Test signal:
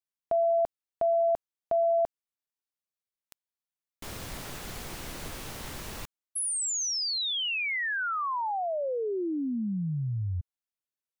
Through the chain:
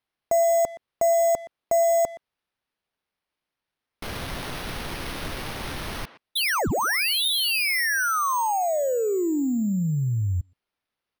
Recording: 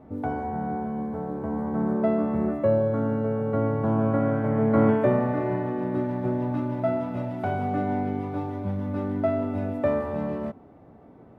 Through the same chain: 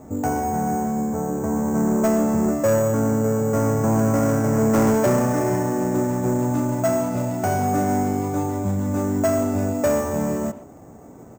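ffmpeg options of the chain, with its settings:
-filter_complex "[0:a]acrusher=samples=6:mix=1:aa=0.000001,asoftclip=type=tanh:threshold=0.0944,asplit=2[s0][s1];[s1]adelay=120,highpass=300,lowpass=3400,asoftclip=type=hard:threshold=0.0316,volume=0.2[s2];[s0][s2]amix=inputs=2:normalize=0,volume=2.24"

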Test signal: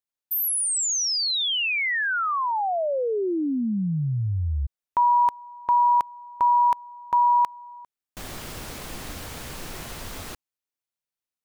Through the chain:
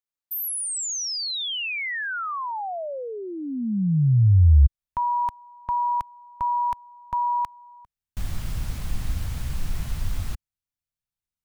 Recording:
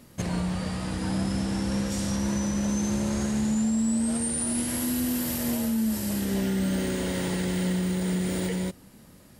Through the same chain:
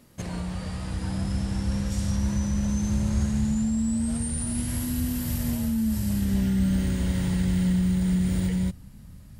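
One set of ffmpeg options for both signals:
-af "asubboost=boost=10.5:cutoff=120,volume=0.631"

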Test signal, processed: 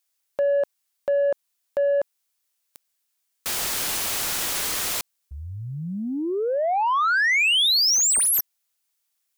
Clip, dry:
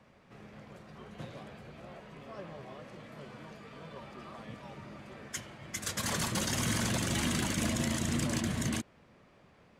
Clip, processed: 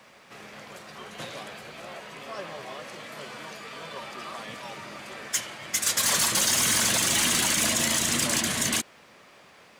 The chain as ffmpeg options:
-filter_complex "[0:a]crystalizer=i=2.5:c=0,asplit=2[s0][s1];[s1]highpass=f=720:p=1,volume=8.91,asoftclip=type=tanh:threshold=0.335[s2];[s0][s2]amix=inputs=2:normalize=0,lowpass=f=6600:p=1,volume=0.501,volume=0.75"

